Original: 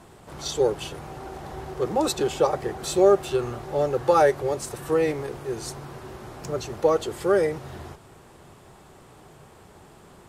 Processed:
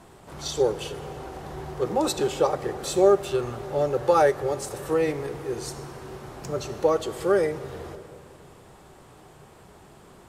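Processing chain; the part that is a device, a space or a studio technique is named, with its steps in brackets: compressed reverb return (on a send at -8.5 dB: reverberation RT60 2.1 s, pre-delay 3 ms + compression, threshold -25 dBFS, peak gain reduction 14 dB); on the sum: trim -1 dB

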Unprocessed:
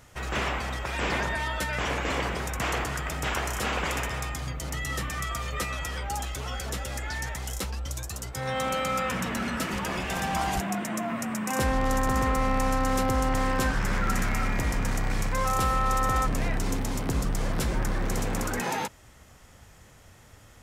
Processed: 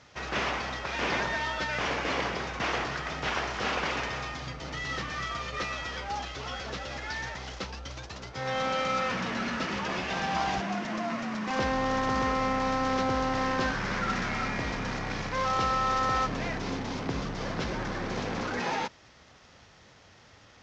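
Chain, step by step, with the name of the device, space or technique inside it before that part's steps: early wireless headset (high-pass 180 Hz 6 dB/octave; CVSD coder 32 kbps)

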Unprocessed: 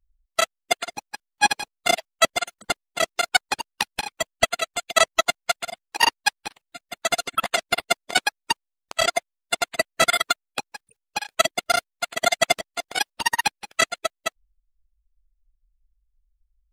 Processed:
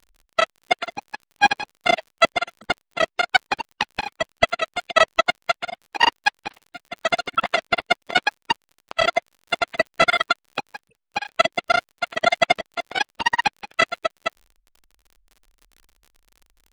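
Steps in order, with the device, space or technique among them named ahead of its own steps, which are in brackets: lo-fi chain (low-pass 3.3 kHz 12 dB/octave; wow and flutter 27 cents; crackle 50 per s -41 dBFS); trim +3 dB

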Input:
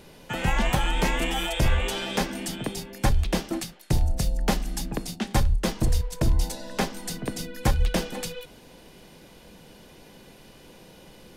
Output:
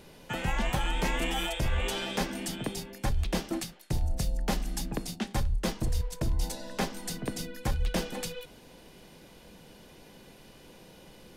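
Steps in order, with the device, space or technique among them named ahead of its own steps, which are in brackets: compression on the reversed sound (reverse; compression, threshold -21 dBFS, peak gain reduction 5.5 dB; reverse); trim -3 dB

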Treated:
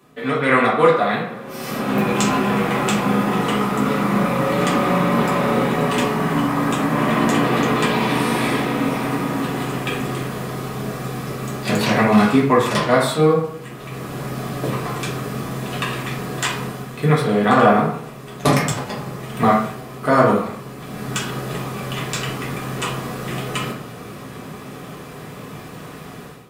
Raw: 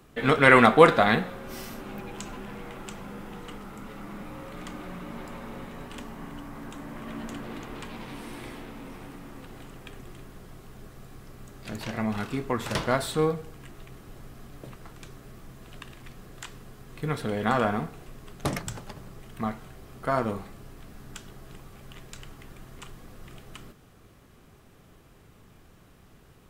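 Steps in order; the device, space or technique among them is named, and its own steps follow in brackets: far laptop microphone (reverberation RT60 0.65 s, pre-delay 3 ms, DRR -6.5 dB; high-pass 120 Hz 12 dB/octave; level rider gain up to 16 dB); trim -1 dB

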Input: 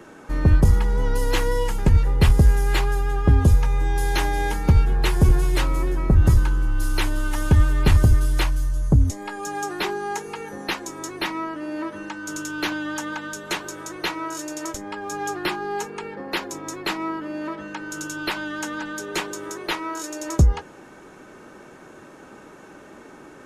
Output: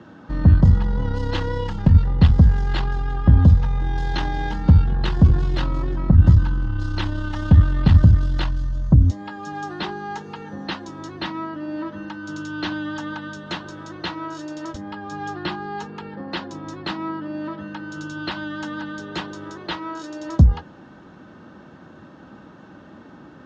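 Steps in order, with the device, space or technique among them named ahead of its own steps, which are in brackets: guitar amplifier (valve stage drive 11 dB, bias 0.4; tone controls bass +12 dB, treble +7 dB; cabinet simulation 84–4000 Hz, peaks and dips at 130 Hz -5 dB, 410 Hz -8 dB, 2.3 kHz -10 dB)

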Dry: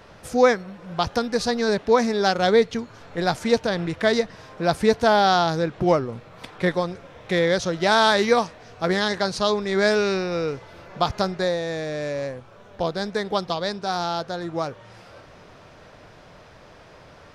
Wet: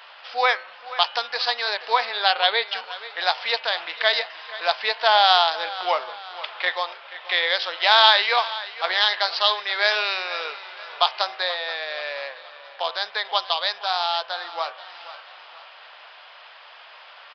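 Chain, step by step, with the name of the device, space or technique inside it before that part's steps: feedback delay 480 ms, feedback 43%, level -16.5 dB; musical greeting card (resampled via 11.025 kHz; high-pass 780 Hz 24 dB/octave; peaking EQ 3 kHz +8 dB 0.54 oct); dynamic bell 1.4 kHz, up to -4 dB, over -35 dBFS, Q 2.4; de-hum 128.1 Hz, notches 25; 2.05–2.68 s: steep low-pass 4.7 kHz 48 dB/octave; trim +5 dB

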